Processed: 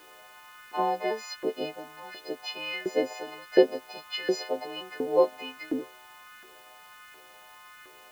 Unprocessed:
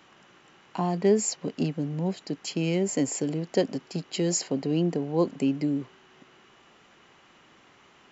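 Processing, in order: frequency quantiser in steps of 3 st; Bessel low-pass 2600 Hz, order 8; LFO high-pass saw up 1.4 Hz 360–1600 Hz; added noise white -59 dBFS

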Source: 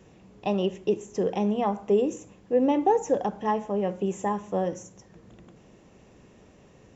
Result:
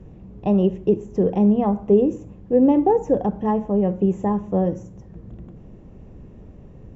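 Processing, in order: tilt -4.5 dB/oct

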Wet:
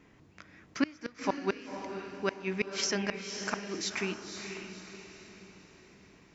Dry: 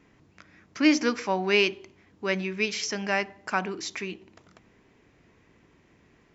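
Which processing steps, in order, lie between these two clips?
flipped gate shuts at -15 dBFS, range -30 dB; diffused feedback echo 0.527 s, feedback 44%, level -7 dB

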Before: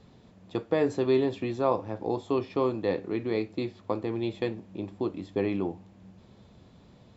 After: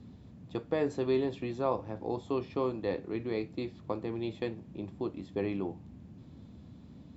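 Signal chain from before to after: band noise 63–260 Hz -46 dBFS; gain -5 dB

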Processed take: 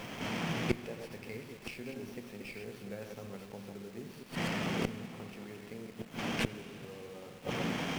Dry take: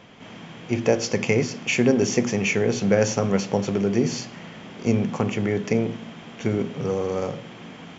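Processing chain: reverse delay 0.121 s, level -5 dB; bell 2600 Hz +4 dB 0.76 oct; in parallel at -1.5 dB: compressor 8:1, threshold -27 dBFS, peak gain reduction 14.5 dB; on the sum: flipped gate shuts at -15 dBFS, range -26 dB; bit-crush 9-bit; on a send at -13 dB: reverb RT60 4.4 s, pre-delay 76 ms; on the sum: running maximum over 5 samples; gain -1 dB

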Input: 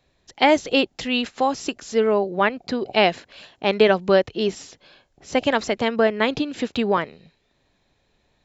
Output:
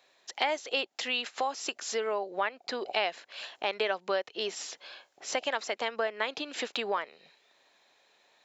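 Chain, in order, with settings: HPF 630 Hz 12 dB/oct; compressor 2.5:1, threshold -38 dBFS, peak gain reduction 16.5 dB; gain +4.5 dB

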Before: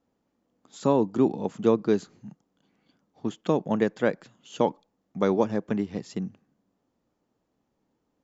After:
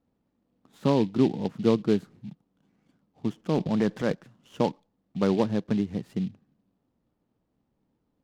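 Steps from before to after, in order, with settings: tone controls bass +8 dB, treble -13 dB; 3.33–4.13 transient shaper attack -4 dB, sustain +8 dB; noise-modulated delay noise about 3000 Hz, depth 0.031 ms; gain -3 dB

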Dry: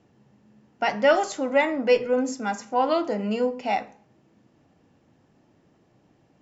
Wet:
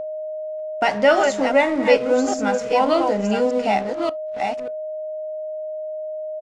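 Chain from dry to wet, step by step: reverse delay 0.585 s, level -5.5 dB; in parallel at +2 dB: compressor, threshold -31 dBFS, peak gain reduction 17.5 dB; on the sum: crossover distortion -39.5 dBFS; whine 620 Hz -27 dBFS; on a send at -17.5 dB: reverb, pre-delay 5 ms; on the sum: downsampling 22050 Hz; gain +2 dB

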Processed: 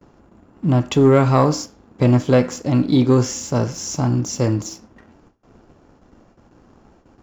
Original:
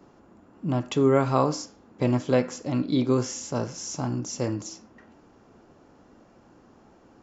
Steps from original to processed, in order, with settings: gate with hold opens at -46 dBFS; low shelf 100 Hz +11.5 dB; sample leveller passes 1; gain +3.5 dB

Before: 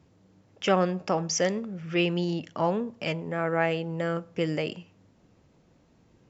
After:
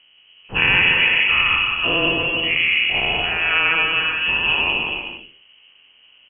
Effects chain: spectral dilation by 0.24 s; inverted band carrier 3100 Hz; bouncing-ball echo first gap 0.17 s, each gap 0.7×, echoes 5; gain +1.5 dB

